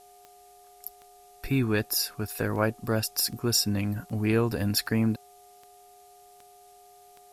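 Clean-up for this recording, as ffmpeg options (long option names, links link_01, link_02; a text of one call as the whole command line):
ffmpeg -i in.wav -af "adeclick=threshold=4,bandreject=frequency=405.3:width_type=h:width=4,bandreject=frequency=810.6:width_type=h:width=4,bandreject=frequency=1215.9:width_type=h:width=4,bandreject=frequency=720:width=30,agate=range=-21dB:threshold=-46dB" out.wav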